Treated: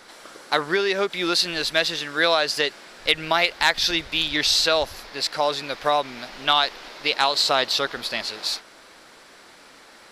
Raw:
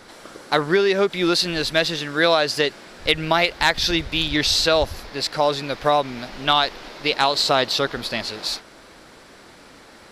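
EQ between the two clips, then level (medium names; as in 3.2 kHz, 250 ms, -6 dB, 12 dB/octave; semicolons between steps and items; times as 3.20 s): peaking EQ 74 Hz -5.5 dB 2 oct; bass shelf 500 Hz -8 dB; 0.0 dB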